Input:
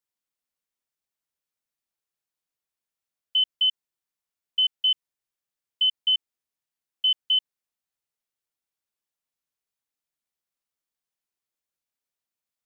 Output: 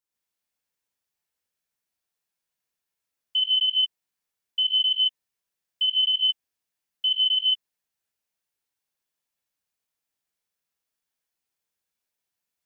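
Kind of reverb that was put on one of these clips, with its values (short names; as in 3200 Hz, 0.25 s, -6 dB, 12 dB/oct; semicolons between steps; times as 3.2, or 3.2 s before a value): non-linear reverb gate 0.17 s rising, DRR -5 dB; gain -2 dB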